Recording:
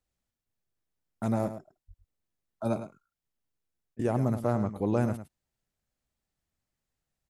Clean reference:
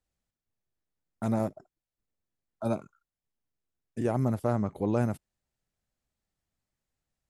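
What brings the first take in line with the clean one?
de-plosive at 1.87; interpolate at 3.95, 41 ms; inverse comb 0.106 s -11.5 dB

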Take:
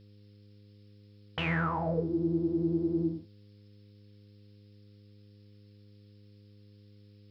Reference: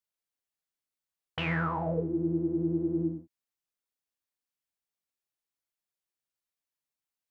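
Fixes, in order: de-hum 102.8 Hz, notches 5; noise print and reduce 30 dB

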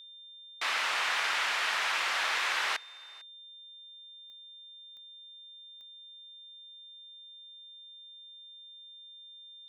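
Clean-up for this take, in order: de-click; notch 3600 Hz, Q 30; inverse comb 0.45 s -24 dB

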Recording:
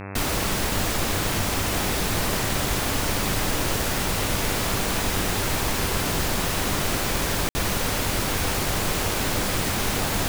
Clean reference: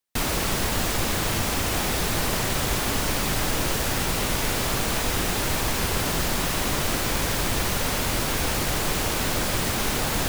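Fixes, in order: de-hum 98.2 Hz, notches 27; room tone fill 7.49–7.55

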